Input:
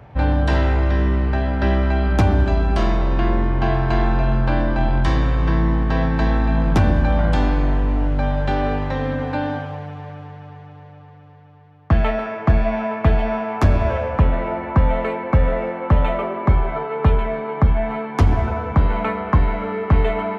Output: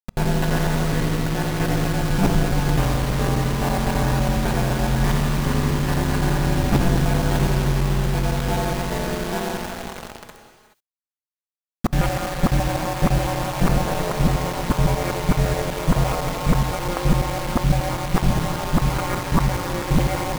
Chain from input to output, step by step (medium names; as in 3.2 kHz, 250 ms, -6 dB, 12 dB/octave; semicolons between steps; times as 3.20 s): time reversed locally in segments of 84 ms; ring modulator 91 Hz; bit crusher 5-bit; gated-style reverb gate 450 ms rising, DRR 9 dB